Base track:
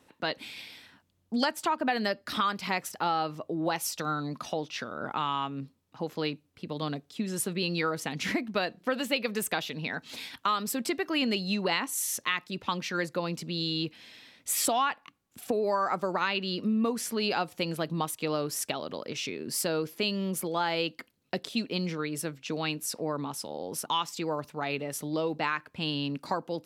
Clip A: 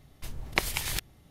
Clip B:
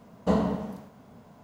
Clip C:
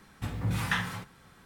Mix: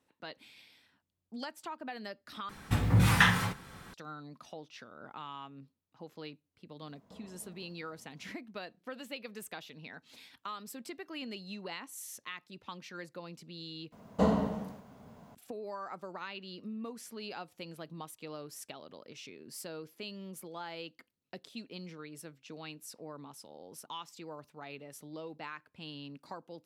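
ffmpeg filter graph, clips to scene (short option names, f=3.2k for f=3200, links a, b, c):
-filter_complex "[2:a]asplit=2[a][b];[0:a]volume=-14dB[c];[3:a]acontrast=87[d];[a]acompressor=threshold=-37dB:ratio=6:attack=3.2:release=140:knee=1:detection=peak[e];[b]bandreject=f=60:t=h:w=6,bandreject=f=120:t=h:w=6,bandreject=f=180:t=h:w=6,bandreject=f=240:t=h:w=6,bandreject=f=300:t=h:w=6,bandreject=f=360:t=h:w=6,bandreject=f=420:t=h:w=6,bandreject=f=480:t=h:w=6,bandreject=f=540:t=h:w=6[f];[c]asplit=3[g][h][i];[g]atrim=end=2.494[j];[d]atrim=end=1.45,asetpts=PTS-STARTPTS,volume=-1dB[k];[h]atrim=start=3.936:end=13.924[l];[f]atrim=end=1.43,asetpts=PTS-STARTPTS,volume=-2dB[m];[i]atrim=start=15.346[n];[e]atrim=end=1.43,asetpts=PTS-STARTPTS,volume=-15dB,afade=t=in:d=0.004:c=hsin,afade=t=out:st=1.426:d=0.004:c=hsin,adelay=6840[o];[j][k]acrossfade=d=0.004:c1=hsin:c2=hsin[p];[p][l]acrossfade=d=0.004:c1=hsin:c2=hsin[q];[q][m]acrossfade=d=0.004:c1=hsin:c2=hsin[r];[r][n]acrossfade=d=0.004:c1=hsin:c2=hsin[s];[s][o]amix=inputs=2:normalize=0"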